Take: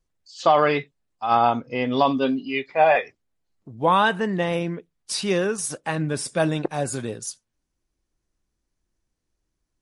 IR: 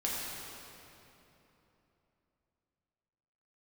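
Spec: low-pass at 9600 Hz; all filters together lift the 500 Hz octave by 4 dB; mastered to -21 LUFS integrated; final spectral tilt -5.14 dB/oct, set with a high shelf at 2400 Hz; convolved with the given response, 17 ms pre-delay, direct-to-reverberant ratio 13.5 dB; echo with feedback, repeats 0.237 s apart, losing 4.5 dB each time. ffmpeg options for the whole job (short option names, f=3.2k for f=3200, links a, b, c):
-filter_complex "[0:a]lowpass=9.6k,equalizer=f=500:t=o:g=5.5,highshelf=f=2.4k:g=-8,aecho=1:1:237|474|711|948|1185|1422|1659|1896|2133:0.596|0.357|0.214|0.129|0.0772|0.0463|0.0278|0.0167|0.01,asplit=2[a][b];[1:a]atrim=start_sample=2205,adelay=17[c];[b][c]afir=irnorm=-1:irlink=0,volume=-19.5dB[d];[a][d]amix=inputs=2:normalize=0,volume=-1.5dB"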